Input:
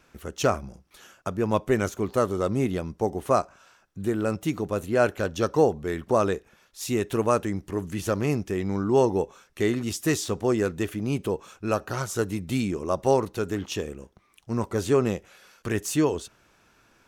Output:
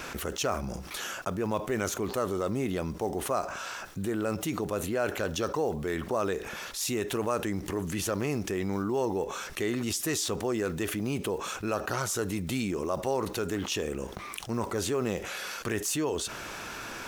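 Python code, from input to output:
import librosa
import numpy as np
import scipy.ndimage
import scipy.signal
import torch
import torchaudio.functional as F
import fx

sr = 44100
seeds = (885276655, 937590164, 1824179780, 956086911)

y = fx.block_float(x, sr, bits=7)
y = fx.low_shelf(y, sr, hz=270.0, db=-7.0)
y = fx.env_flatten(y, sr, amount_pct=70)
y = y * librosa.db_to_amplitude(-9.0)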